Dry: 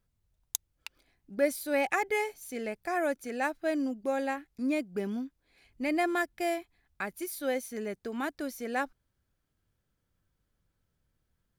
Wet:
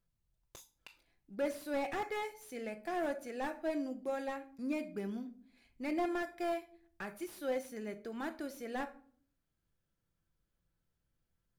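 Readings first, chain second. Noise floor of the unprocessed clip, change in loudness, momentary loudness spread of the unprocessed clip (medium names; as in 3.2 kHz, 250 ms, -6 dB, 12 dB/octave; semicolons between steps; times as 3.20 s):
-80 dBFS, -7.0 dB, 10 LU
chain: simulated room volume 510 m³, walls furnished, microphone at 0.77 m; slew-rate limiter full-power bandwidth 43 Hz; trim -6.5 dB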